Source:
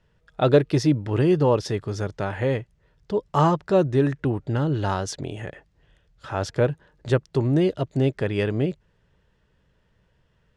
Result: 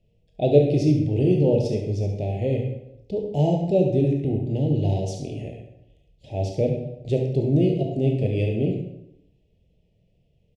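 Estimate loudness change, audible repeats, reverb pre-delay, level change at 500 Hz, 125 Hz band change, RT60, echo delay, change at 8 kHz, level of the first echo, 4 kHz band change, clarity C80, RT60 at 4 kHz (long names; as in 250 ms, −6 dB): +0.5 dB, 1, 17 ms, 0.0 dB, +2.0 dB, 0.80 s, 70 ms, can't be measured, −9.0 dB, −5.5 dB, 7.0 dB, 0.60 s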